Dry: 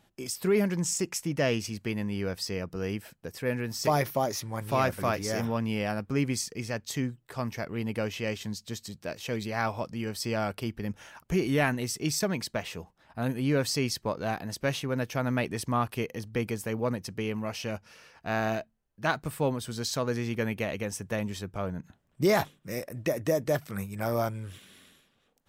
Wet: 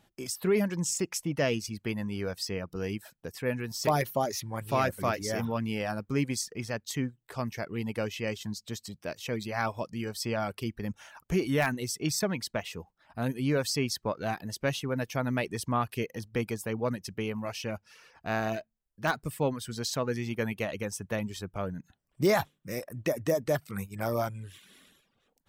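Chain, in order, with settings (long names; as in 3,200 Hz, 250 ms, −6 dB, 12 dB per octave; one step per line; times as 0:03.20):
reverb reduction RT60 0.54 s
in parallel at −11.5 dB: wrap-around overflow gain 14.5 dB
on the sum: level −2.5 dB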